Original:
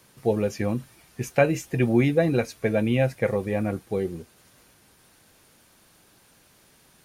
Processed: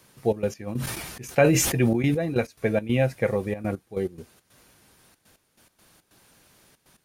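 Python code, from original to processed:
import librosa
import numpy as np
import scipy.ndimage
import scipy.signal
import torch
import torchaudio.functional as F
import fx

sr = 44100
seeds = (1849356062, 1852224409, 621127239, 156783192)

y = fx.step_gate(x, sr, bpm=140, pattern='xxx.x..x.xx.xxx', floor_db=-12.0, edge_ms=4.5)
y = fx.sustainer(y, sr, db_per_s=38.0, at=(0.66, 2.36), fade=0.02)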